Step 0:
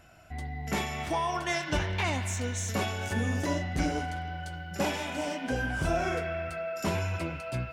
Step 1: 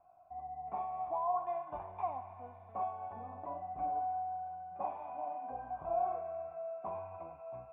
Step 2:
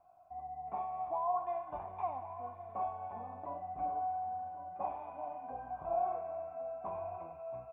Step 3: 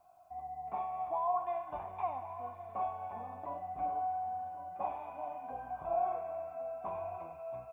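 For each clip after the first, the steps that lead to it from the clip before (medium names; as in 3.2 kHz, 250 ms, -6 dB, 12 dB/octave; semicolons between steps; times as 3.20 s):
cascade formant filter a; trim +3 dB
echo from a far wall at 190 m, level -11 dB
treble shelf 2.4 kHz +11 dB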